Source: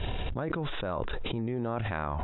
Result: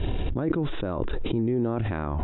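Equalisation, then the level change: bass shelf 220 Hz +8.5 dB; peaking EQ 320 Hz +10 dB 0.95 oct; -2.0 dB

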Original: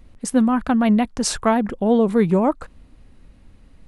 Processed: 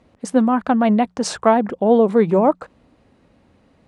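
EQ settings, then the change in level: band-pass 100–7800 Hz; peaking EQ 630 Hz +7.5 dB 2 oct; hum notches 60/120/180 Hz; -2.0 dB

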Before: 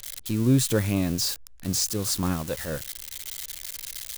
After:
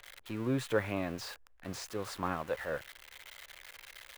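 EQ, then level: tone controls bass +2 dB, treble -10 dB; three-band isolator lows -17 dB, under 450 Hz, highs -12 dB, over 2.6 kHz; 0.0 dB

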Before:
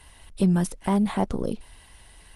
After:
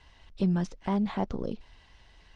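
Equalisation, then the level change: steep low-pass 6.3 kHz 36 dB/octave; -5.5 dB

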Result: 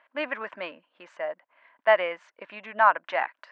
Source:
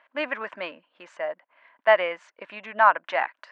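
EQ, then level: distance through air 56 m; -1.5 dB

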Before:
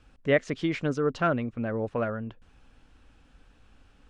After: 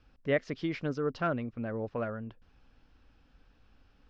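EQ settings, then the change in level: distance through air 150 m; peaking EQ 5.1 kHz +9 dB 0.59 oct; -5.0 dB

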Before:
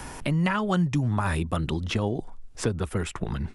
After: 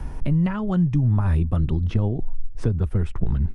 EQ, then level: tilt EQ -3 dB/octave; bass shelf 130 Hz +7 dB; band-stop 7.4 kHz, Q 12; -6.0 dB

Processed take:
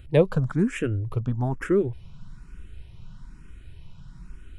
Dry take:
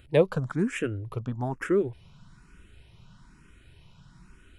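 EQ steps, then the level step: bass shelf 65 Hz +11 dB; bass shelf 280 Hz +5 dB; 0.0 dB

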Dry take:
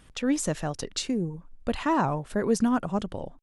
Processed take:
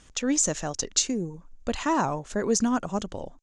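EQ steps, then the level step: resonant low-pass 6.7 kHz, resonance Q 5; peaking EQ 140 Hz -4.5 dB 0.86 oct; 0.0 dB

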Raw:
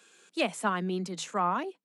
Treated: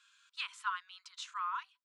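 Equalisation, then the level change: rippled Chebyshev high-pass 970 Hz, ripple 6 dB; distance through air 63 m; -2.5 dB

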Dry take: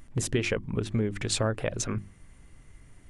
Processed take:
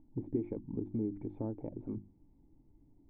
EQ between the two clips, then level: cascade formant filter u; +1.5 dB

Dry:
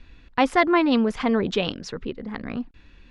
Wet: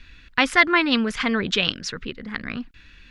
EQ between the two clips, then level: FFT filter 160 Hz 0 dB, 380 Hz -4 dB, 850 Hz -5 dB, 1.5 kHz +8 dB; 0.0 dB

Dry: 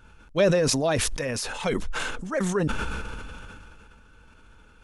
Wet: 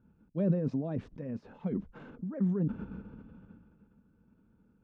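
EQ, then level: band-pass filter 200 Hz, Q 2.2; distance through air 120 m; 0.0 dB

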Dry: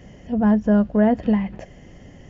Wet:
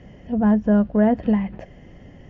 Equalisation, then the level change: distance through air 150 m; 0.0 dB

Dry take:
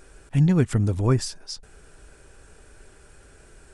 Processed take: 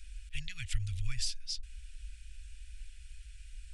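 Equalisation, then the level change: inverse Chebyshev band-stop 210–800 Hz, stop band 70 dB; tone controls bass -1 dB, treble -14 dB; +7.0 dB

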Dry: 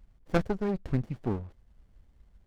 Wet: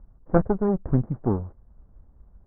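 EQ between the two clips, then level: inverse Chebyshev low-pass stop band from 3.3 kHz, stop band 50 dB; +7.0 dB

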